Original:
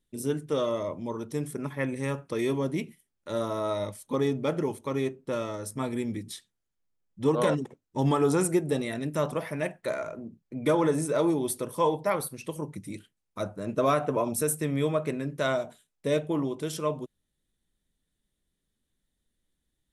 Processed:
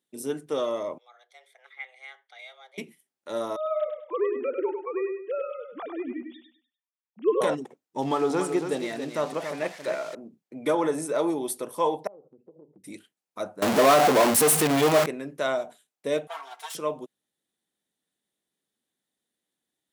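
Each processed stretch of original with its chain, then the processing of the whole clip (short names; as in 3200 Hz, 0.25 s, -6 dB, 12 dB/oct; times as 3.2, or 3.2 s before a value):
0.98–2.78 double band-pass 2400 Hz, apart 0.71 oct + frequency shift +260 Hz
3.56–7.41 sine-wave speech + feedback echo 0.1 s, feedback 31%, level -6 dB
8.02–10.15 switching spikes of -29 dBFS + LPF 5600 Hz + echo 0.277 s -8 dB
12.07–12.84 ladder low-pass 590 Hz, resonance 40% + compressor 8:1, threshold -45 dBFS
13.62–15.06 zero-crossing step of -27 dBFS + bell 88 Hz +8 dB 0.91 oct + power-law curve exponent 0.5
16.27–16.75 minimum comb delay 7.3 ms + HPF 850 Hz 24 dB/oct + comb 4.4 ms, depth 87%
whole clip: HPF 270 Hz 12 dB/oct; bell 760 Hz +5 dB 0.3 oct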